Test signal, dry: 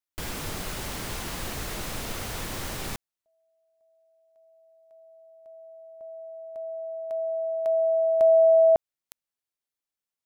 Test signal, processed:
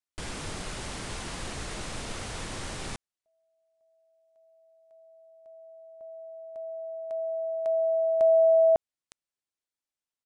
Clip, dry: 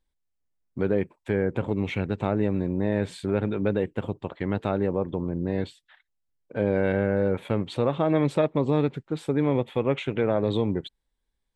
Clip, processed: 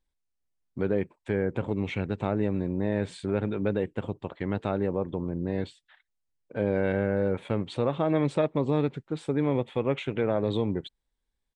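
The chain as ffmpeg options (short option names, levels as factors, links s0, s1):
-af "aresample=22050,aresample=44100,volume=0.75"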